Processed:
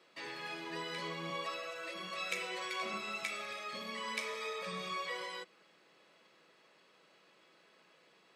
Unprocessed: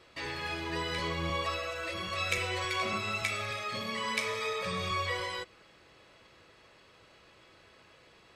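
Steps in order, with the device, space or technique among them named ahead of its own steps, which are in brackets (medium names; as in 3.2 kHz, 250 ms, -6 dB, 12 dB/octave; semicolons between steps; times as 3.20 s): steep high-pass 160 Hz 48 dB/octave; low shelf boost with a cut just above (bass shelf 77 Hz +8 dB; peaking EQ 240 Hz -2.5 dB 0.77 oct); trim -6.5 dB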